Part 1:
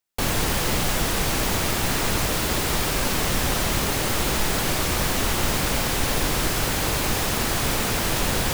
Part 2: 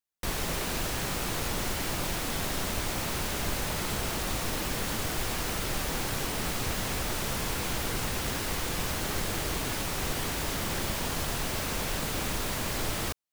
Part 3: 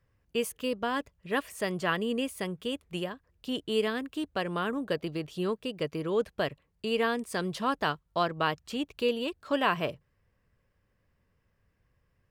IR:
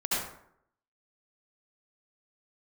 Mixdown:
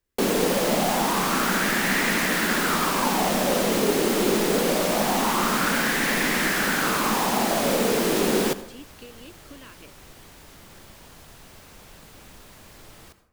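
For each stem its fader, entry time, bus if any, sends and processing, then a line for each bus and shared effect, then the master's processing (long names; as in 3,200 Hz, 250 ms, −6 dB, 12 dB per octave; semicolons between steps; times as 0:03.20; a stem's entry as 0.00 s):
−3.0 dB, 0.00 s, send −22.5 dB, low shelf with overshoot 140 Hz −13.5 dB, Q 3; auto-filter bell 0.24 Hz 400–1,900 Hz +12 dB
−17.0 dB, 0.00 s, send −18.5 dB, no processing
−7.0 dB, 0.00 s, no send, downward compressor, threshold −32 dBFS, peak gain reduction 11 dB; phaser with its sweep stopped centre 310 Hz, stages 4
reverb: on, RT60 0.70 s, pre-delay 62 ms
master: no processing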